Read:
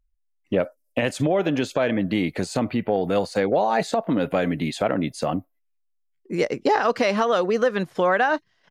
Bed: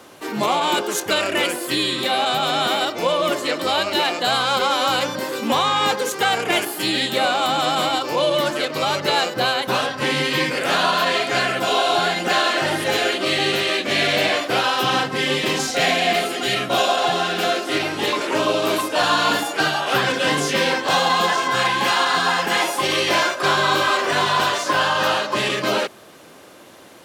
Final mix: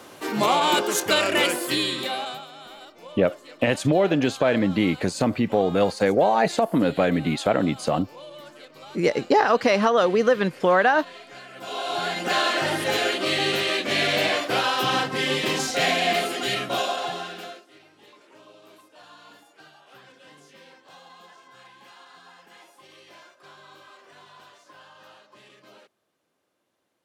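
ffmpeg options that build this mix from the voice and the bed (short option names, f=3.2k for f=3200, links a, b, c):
-filter_complex "[0:a]adelay=2650,volume=1.5dB[a];[1:a]volume=19dB,afade=t=out:st=1.53:d=0.94:silence=0.0749894,afade=t=in:st=11.5:d=0.93:silence=0.105925,afade=t=out:st=16.35:d=1.32:silence=0.0421697[b];[a][b]amix=inputs=2:normalize=0"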